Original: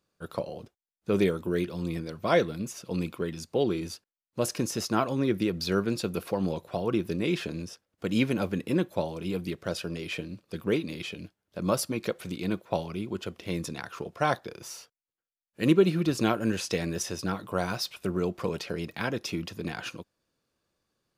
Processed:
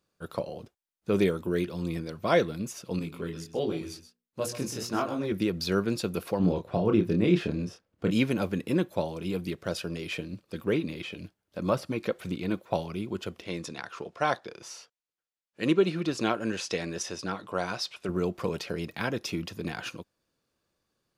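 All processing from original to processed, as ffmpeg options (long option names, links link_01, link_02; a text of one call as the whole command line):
ffmpeg -i in.wav -filter_complex "[0:a]asettb=1/sr,asplit=3[link_01][link_02][link_03];[link_01]atrim=end=2.994[link_04];[link_02]atrim=start=2.99:end=5.32,asetpts=PTS-STARTPTS,afade=type=in:duration=0.004:curve=qsin,afade=type=out:start_time=2.326:duration=0.004:curve=qsin,flanger=delay=18.5:depth=6.5:speed=1.4,bandreject=frequency=60:width_type=h:width=6,bandreject=frequency=120:width_type=h:width=6,bandreject=frequency=180:width_type=h:width=6,bandreject=frequency=240:width_type=h:width=6,bandreject=frequency=300:width_type=h:width=6,bandreject=frequency=360:width_type=h:width=6,bandreject=frequency=420:width_type=h:width=6,bandreject=frequency=480:width_type=h:width=6,aecho=1:1:129:0.251,atrim=end_sample=102753[link_05];[link_03]atrim=start=5.316[link_06];[link_04][link_05]acrossfade=duration=0.004:curve1=hsin:curve2=qsin[link_07];[link_07][link_06]acrossfade=duration=0.004:curve1=qsin:curve2=hsin,asettb=1/sr,asplit=3[link_08][link_09][link_10];[link_08]atrim=end=6.394[link_11];[link_09]atrim=start=6.39:end=8.11,asetpts=PTS-STARTPTS,afade=type=in:duration=0.004:curve=qsin,afade=type=out:start_time=1.716:duration=0.004:curve=qsin,lowpass=frequency=3300:poles=1,lowshelf=frequency=370:gain=6,asplit=2[link_12][link_13];[link_13]adelay=28,volume=-6dB[link_14];[link_12][link_14]amix=inputs=2:normalize=0,atrim=end_sample=75852[link_15];[link_10]atrim=start=8.106[link_16];[link_11][link_15]acrossfade=duration=0.004:curve1=hsin:curve2=qsin[link_17];[link_17][link_16]acrossfade=duration=0.004:curve1=qsin:curve2=hsin,asettb=1/sr,asplit=3[link_18][link_19][link_20];[link_18]atrim=end=10.334[link_21];[link_19]atrim=start=10.33:end=12.74,asetpts=PTS-STARTPTS,afade=type=in:duration=0.004:curve=qsin,afade=type=out:start_time=2.406:duration=0.004:curve=qsin,acrossover=split=3400[link_22][link_23];[link_23]acompressor=threshold=-50dB:ratio=4:attack=1:release=60[link_24];[link_22][link_24]amix=inputs=2:normalize=0,aphaser=in_gain=1:out_gain=1:delay=3.9:decay=0.28:speed=2:type=sinusoidal[link_25];[link_20]atrim=start=12.736[link_26];[link_21][link_25]acrossfade=duration=0.004:curve1=hsin:curve2=qsin[link_27];[link_27][link_26]acrossfade=duration=0.004:curve1=qsin:curve2=hsin,asettb=1/sr,asplit=3[link_28][link_29][link_30];[link_28]atrim=end=13.424[link_31];[link_29]atrim=start=13.42:end=18.09,asetpts=PTS-STARTPTS,afade=type=in:duration=0.004:curve=qsin,afade=type=out:start_time=4.666:duration=0.004:curve=qsin,lowpass=7400,lowshelf=frequency=180:gain=-10.5[link_32];[link_30]atrim=start=18.086[link_33];[link_31][link_32]acrossfade=duration=0.004:curve1=hsin:curve2=qsin[link_34];[link_34][link_33]acrossfade=duration=0.004:curve1=qsin:curve2=hsin" out.wav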